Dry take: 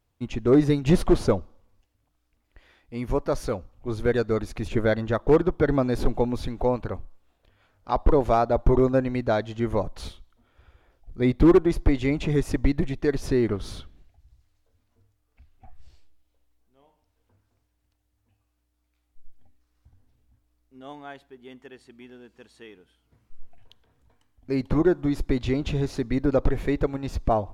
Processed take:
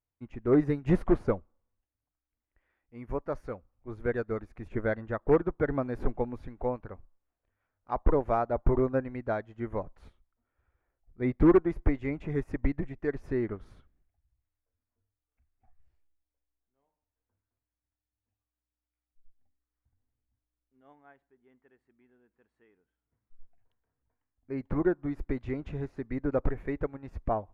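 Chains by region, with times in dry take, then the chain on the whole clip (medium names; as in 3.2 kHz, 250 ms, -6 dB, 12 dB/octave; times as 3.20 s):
20.94–24.58 s: low-pass 9.4 kHz + peaking EQ 4.9 kHz -5 dB 1.6 oct
whole clip: resonant high shelf 2.7 kHz -11 dB, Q 1.5; upward expansion 1.5:1, over -42 dBFS; trim -4 dB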